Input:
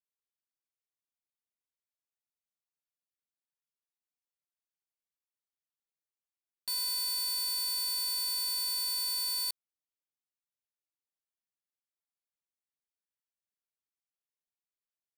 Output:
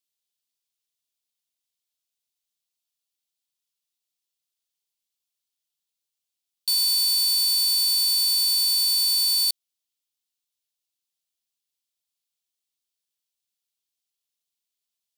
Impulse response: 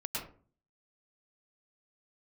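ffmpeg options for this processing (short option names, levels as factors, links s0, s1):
-af "highshelf=f=2400:t=q:w=1.5:g=10"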